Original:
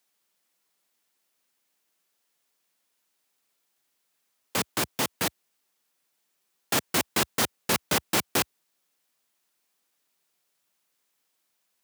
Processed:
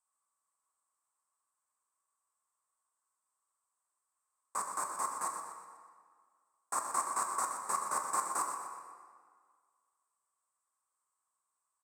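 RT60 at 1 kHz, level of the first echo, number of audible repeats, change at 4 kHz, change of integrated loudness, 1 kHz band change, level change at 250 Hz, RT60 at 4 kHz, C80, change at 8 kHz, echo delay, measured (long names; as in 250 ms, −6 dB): 1.9 s, −9.5 dB, 2, −25.0 dB, −9.0 dB, −0.5 dB, −22.5 dB, 1.3 s, 4.0 dB, −6.5 dB, 123 ms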